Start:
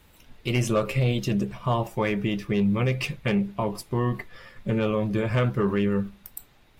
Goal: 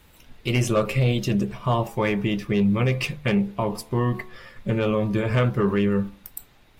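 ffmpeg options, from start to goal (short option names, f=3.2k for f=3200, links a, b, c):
-af "bandreject=f=73.63:t=h:w=4,bandreject=f=147.26:t=h:w=4,bandreject=f=220.89:t=h:w=4,bandreject=f=294.52:t=h:w=4,bandreject=f=368.15:t=h:w=4,bandreject=f=441.78:t=h:w=4,bandreject=f=515.41:t=h:w=4,bandreject=f=589.04:t=h:w=4,bandreject=f=662.67:t=h:w=4,bandreject=f=736.3:t=h:w=4,bandreject=f=809.93:t=h:w=4,bandreject=f=883.56:t=h:w=4,bandreject=f=957.19:t=h:w=4,bandreject=f=1.03082k:t=h:w=4,bandreject=f=1.10445k:t=h:w=4,bandreject=f=1.17808k:t=h:w=4,volume=2.5dB"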